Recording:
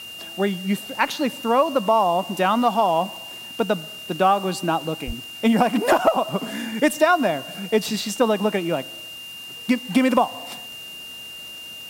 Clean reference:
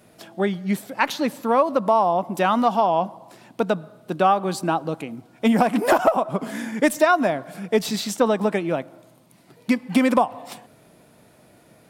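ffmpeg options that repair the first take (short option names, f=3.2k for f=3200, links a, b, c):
-filter_complex "[0:a]adeclick=t=4,bandreject=f=2.8k:w=30,asplit=3[a][b][c];[a]afade=t=out:st=5.06:d=0.02[d];[b]highpass=f=140:w=0.5412,highpass=f=140:w=1.3066,afade=t=in:st=5.06:d=0.02,afade=t=out:st=5.18:d=0.02[e];[c]afade=t=in:st=5.18:d=0.02[f];[d][e][f]amix=inputs=3:normalize=0,afwtdn=0.0056"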